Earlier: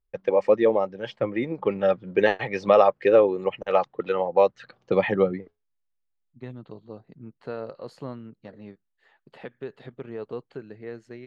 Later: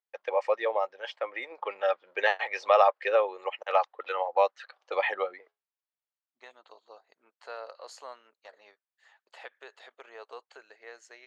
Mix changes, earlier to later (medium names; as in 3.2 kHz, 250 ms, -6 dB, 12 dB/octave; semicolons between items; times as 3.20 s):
second voice: add peaking EQ 6.8 kHz +12.5 dB 0.76 oct; master: add high-pass 650 Hz 24 dB/octave